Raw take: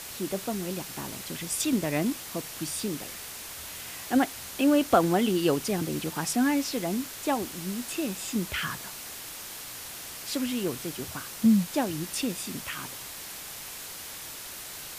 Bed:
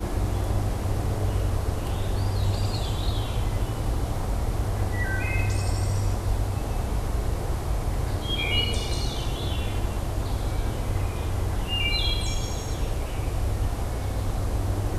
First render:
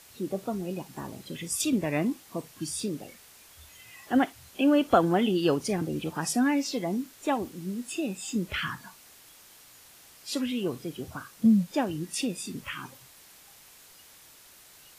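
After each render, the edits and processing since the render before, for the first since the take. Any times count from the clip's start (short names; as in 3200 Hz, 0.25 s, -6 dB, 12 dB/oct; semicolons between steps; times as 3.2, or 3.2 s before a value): noise print and reduce 13 dB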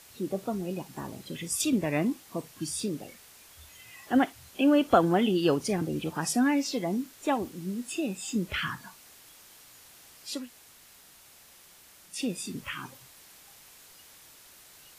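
10.38–12.16 room tone, crossfade 0.24 s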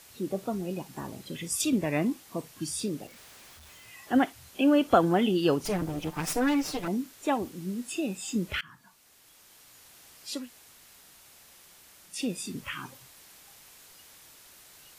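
3.07–3.88 Schmitt trigger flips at -59 dBFS; 5.65–6.88 minimum comb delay 6.6 ms; 8.61–10.4 fade in equal-power, from -23.5 dB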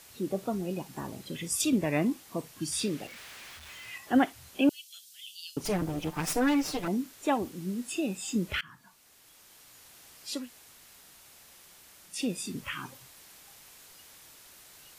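2.72–3.98 bell 2200 Hz +8.5 dB 2.1 oct; 4.69–5.57 inverse Chebyshev high-pass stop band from 1100 Hz, stop band 60 dB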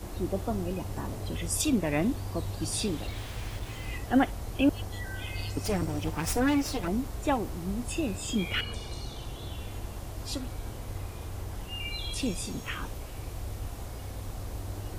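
add bed -11 dB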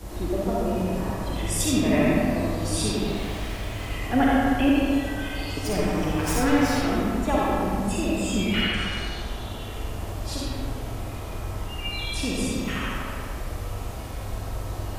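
band-limited delay 79 ms, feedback 67%, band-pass 1500 Hz, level -4.5 dB; digital reverb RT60 1.9 s, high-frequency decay 0.55×, pre-delay 15 ms, DRR -5 dB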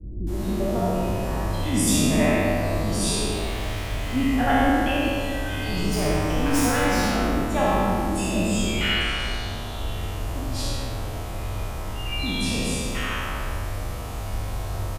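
spectral trails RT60 1.12 s; bands offset in time lows, highs 0.27 s, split 330 Hz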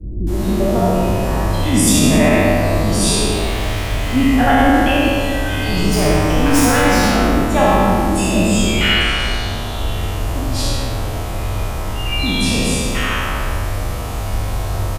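gain +8.5 dB; limiter -2 dBFS, peak gain reduction 3 dB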